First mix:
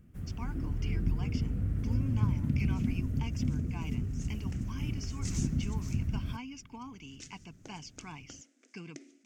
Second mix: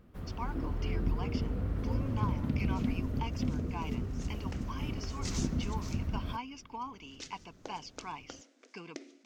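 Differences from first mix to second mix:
speech -4.0 dB; master: add ten-band EQ 125 Hz -6 dB, 500 Hz +8 dB, 1000 Hz +11 dB, 4000 Hz +9 dB, 8000 Hz -5 dB

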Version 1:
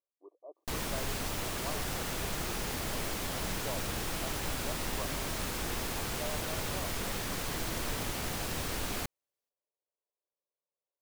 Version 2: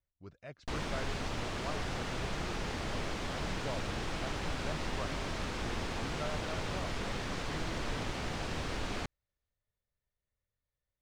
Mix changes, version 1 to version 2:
speech: remove brick-wall FIR band-pass 300–1200 Hz; master: add air absorption 110 m

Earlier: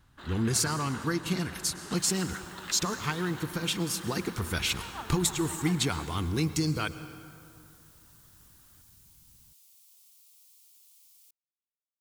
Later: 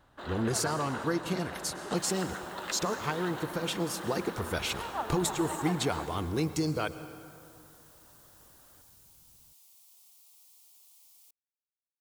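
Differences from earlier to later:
speech -5.0 dB; master: add bell 590 Hz +12 dB 1.4 oct

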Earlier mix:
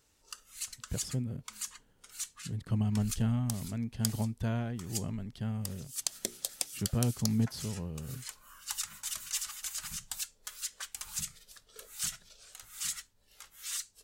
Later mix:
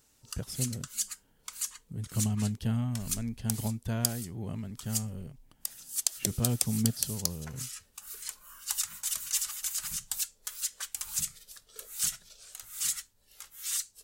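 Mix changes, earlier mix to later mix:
speech: entry -0.55 s; master: add high shelf 6800 Hz +9 dB

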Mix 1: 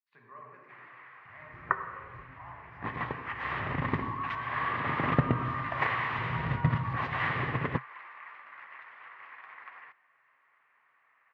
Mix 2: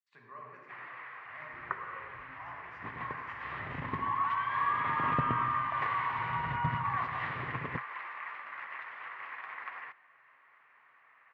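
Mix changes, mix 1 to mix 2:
speech: remove air absorption 200 m; first sound +5.5 dB; second sound -8.0 dB

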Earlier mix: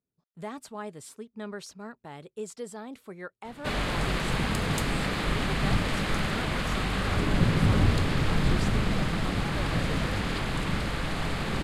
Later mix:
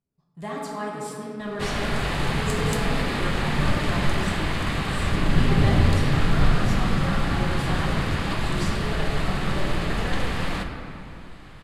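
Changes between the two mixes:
background: entry -2.05 s; reverb: on, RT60 2.7 s

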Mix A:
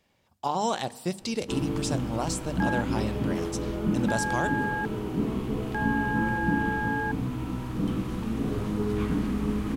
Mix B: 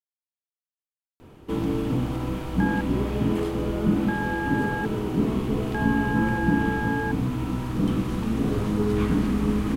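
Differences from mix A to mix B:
speech: muted; first sound +4.5 dB; reverb: off

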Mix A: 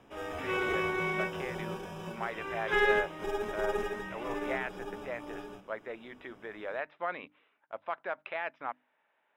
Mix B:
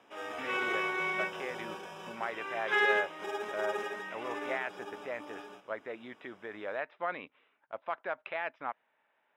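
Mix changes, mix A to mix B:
background: add weighting filter A; master: remove notches 50/100/150/200/250/300 Hz

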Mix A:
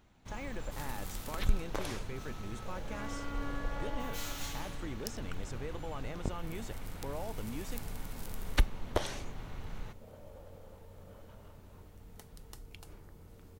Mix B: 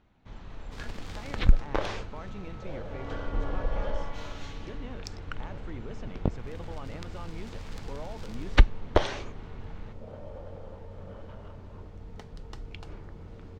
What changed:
speech: entry +0.85 s; second sound +9.5 dB; master: add air absorption 160 m

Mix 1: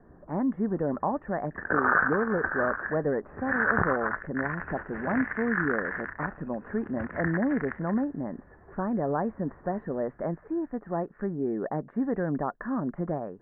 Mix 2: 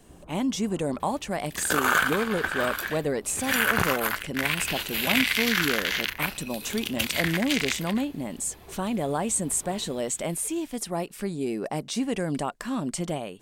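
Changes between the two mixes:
first sound +5.0 dB; master: remove Chebyshev low-pass 1800 Hz, order 6

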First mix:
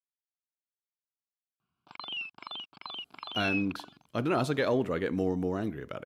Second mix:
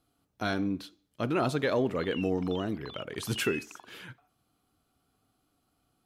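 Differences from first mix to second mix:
speech: entry -2.95 s; background -6.0 dB

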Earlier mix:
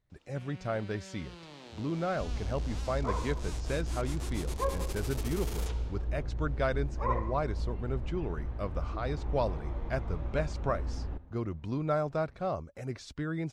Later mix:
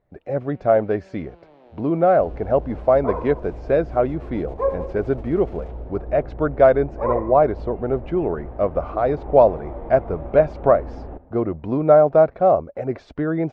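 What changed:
speech +5.0 dB; first sound -9.5 dB; master: add EQ curve 110 Hz 0 dB, 690 Hz +15 dB, 1000 Hz +6 dB, 2300 Hz 0 dB, 10000 Hz -25 dB

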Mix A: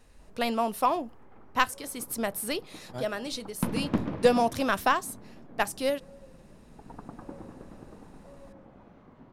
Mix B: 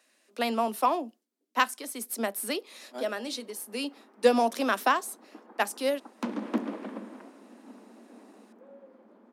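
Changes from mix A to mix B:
background: entry +2.60 s; master: add steep high-pass 210 Hz 96 dB/oct

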